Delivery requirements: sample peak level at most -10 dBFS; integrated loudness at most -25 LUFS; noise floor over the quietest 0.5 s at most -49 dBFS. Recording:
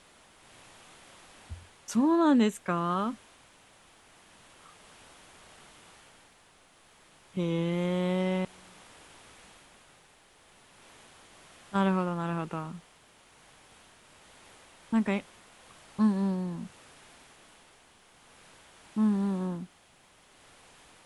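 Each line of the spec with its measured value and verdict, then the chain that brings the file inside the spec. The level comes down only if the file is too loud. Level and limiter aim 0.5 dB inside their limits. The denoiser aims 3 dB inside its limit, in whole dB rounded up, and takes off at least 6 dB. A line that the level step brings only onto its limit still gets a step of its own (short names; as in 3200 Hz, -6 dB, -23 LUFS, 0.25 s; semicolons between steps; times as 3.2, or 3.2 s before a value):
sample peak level -14.5 dBFS: OK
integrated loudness -29.5 LUFS: OK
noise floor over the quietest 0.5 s -61 dBFS: OK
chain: none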